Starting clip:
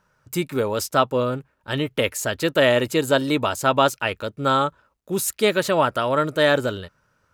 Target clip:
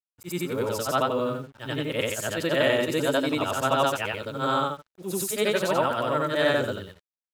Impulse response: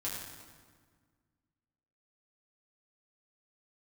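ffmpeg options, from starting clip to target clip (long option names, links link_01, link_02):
-af "afftfilt=real='re':imag='-im':win_size=8192:overlap=0.75,acrusher=bits=8:mix=0:aa=0.5"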